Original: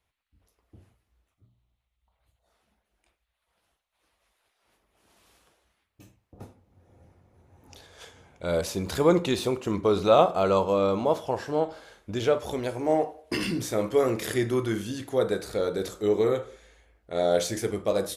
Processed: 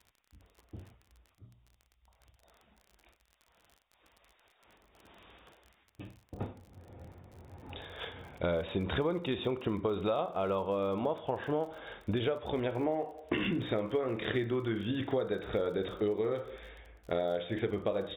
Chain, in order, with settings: brick-wall FIR low-pass 3.8 kHz; compression 12:1, threshold -35 dBFS, peak gain reduction 21.5 dB; crackle 41 per s -52 dBFS; trim +6.5 dB

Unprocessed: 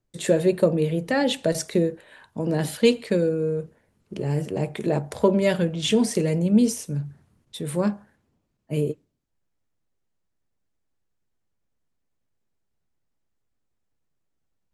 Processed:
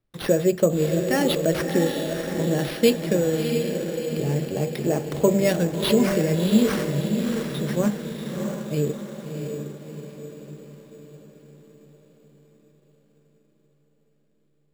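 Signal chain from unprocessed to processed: band-stop 940 Hz, Q 9.7; echo that smears into a reverb 667 ms, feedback 52%, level -5 dB; careless resampling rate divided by 6×, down none, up hold

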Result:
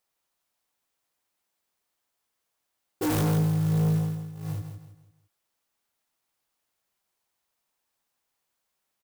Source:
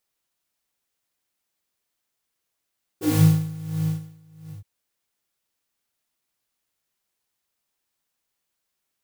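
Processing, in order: peaking EQ 850 Hz +5.5 dB 1.5 oct; waveshaping leveller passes 2; in parallel at +1 dB: compression, threshold -24 dBFS, peak gain reduction 14 dB; on the sum: saturation -19 dBFS, distortion -7 dB; on a send: feedback delay 164 ms, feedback 35%, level -8 dB; on the sum: trim -4.5 dB

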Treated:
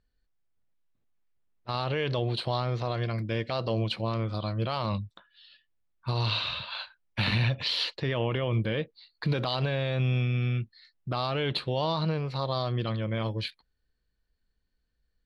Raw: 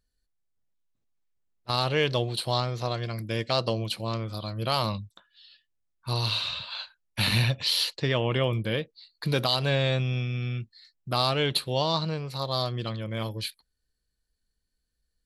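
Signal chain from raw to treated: low-pass 3.2 kHz 12 dB/octave; peak limiter -21 dBFS, peak gain reduction 9 dB; trim +3 dB

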